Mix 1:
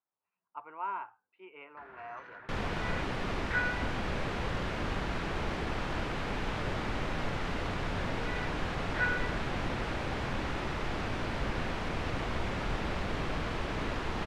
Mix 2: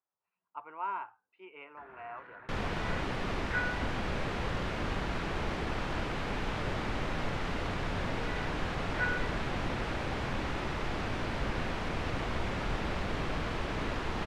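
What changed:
speech: remove distance through air 92 m; first sound: add distance through air 280 m

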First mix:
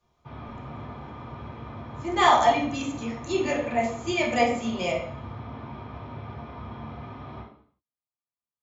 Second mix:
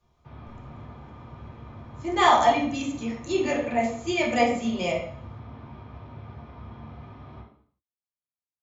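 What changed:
background: send -7.0 dB; master: add bass shelf 150 Hz +7.5 dB

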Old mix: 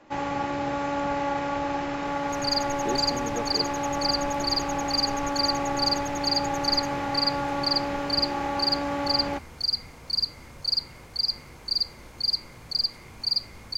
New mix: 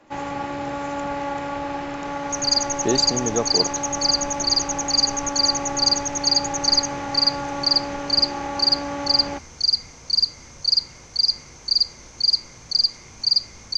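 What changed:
speech +10.0 dB; second sound: add resonant low-pass 6.1 kHz, resonance Q 8.2

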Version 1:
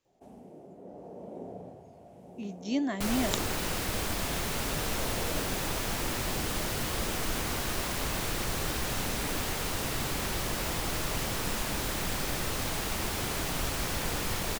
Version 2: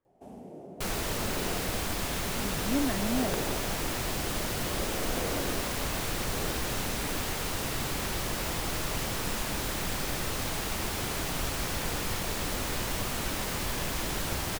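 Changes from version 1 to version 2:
speech: add Savitzky-Golay filter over 41 samples; first sound +4.5 dB; second sound: entry -2.20 s

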